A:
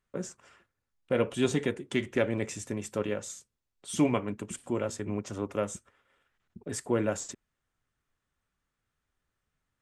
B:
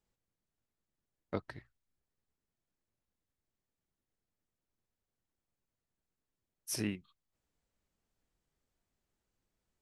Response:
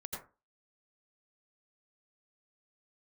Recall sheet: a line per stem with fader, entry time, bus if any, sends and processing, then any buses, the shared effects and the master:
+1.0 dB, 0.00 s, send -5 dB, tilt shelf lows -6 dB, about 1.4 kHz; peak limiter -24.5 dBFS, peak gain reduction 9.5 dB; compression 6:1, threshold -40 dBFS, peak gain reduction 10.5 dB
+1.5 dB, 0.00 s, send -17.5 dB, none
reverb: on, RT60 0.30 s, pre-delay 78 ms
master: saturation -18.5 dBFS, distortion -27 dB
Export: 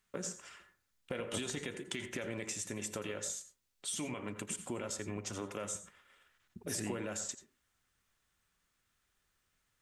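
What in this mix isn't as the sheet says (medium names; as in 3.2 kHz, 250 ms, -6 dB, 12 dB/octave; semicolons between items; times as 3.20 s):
stem B +1.5 dB -> -6.0 dB; master: missing saturation -18.5 dBFS, distortion -27 dB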